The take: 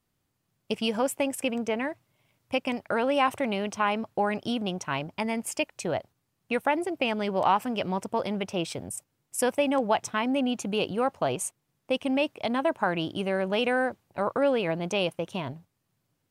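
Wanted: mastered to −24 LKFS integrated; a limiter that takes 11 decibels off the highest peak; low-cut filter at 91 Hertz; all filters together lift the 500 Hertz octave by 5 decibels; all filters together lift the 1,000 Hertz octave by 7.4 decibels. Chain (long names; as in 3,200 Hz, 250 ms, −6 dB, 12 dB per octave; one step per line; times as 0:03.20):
high-pass filter 91 Hz
parametric band 500 Hz +3.5 dB
parametric band 1,000 Hz +8 dB
level +3 dB
brickwall limiter −12 dBFS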